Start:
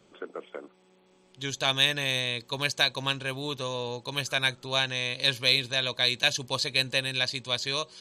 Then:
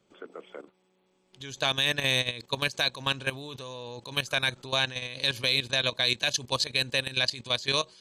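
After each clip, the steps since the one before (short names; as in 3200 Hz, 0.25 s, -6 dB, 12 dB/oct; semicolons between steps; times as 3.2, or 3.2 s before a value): level quantiser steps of 15 dB; gain +5 dB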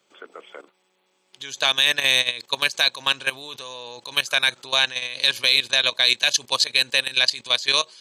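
HPF 1100 Hz 6 dB/oct; gain +8.5 dB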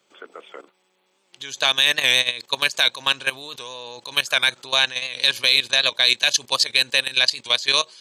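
record warp 78 rpm, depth 100 cents; gain +1 dB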